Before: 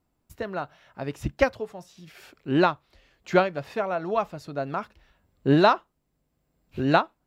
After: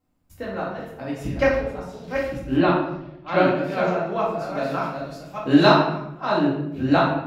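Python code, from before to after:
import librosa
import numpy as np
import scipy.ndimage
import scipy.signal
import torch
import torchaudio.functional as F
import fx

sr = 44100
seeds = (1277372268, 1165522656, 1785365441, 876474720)

y = fx.reverse_delay(x, sr, ms=598, wet_db=-6.0)
y = fx.lowpass(y, sr, hz=4200.0, slope=24, at=(2.56, 3.38))
y = fx.high_shelf(y, sr, hz=2200.0, db=8.5, at=(4.51, 5.69))
y = fx.room_shoebox(y, sr, seeds[0], volume_m3=250.0, walls='mixed', distance_m=2.1)
y = F.gain(torch.from_numpy(y), -4.5).numpy()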